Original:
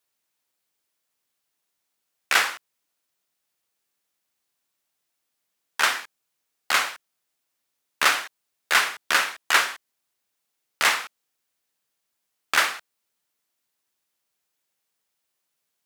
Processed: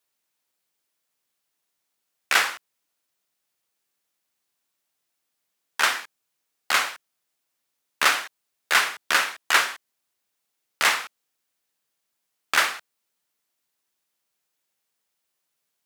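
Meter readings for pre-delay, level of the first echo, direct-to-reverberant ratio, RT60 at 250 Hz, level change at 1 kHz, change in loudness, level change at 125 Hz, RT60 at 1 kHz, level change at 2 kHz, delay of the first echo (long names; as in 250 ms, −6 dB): no reverb audible, no echo audible, no reverb audible, no reverb audible, 0.0 dB, 0.0 dB, can't be measured, no reverb audible, 0.0 dB, no echo audible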